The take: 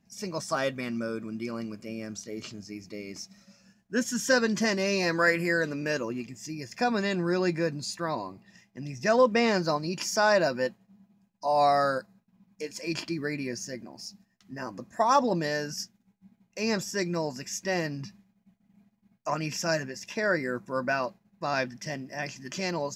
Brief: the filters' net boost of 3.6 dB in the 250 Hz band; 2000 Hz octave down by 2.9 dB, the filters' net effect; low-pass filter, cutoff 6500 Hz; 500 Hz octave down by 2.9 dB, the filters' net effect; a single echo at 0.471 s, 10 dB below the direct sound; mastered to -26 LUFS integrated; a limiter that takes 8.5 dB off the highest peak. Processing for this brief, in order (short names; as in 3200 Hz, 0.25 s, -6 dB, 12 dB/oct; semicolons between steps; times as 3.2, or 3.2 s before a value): LPF 6500 Hz; bell 250 Hz +6 dB; bell 500 Hz -5 dB; bell 2000 Hz -3.5 dB; limiter -20.5 dBFS; echo 0.471 s -10 dB; gain +6 dB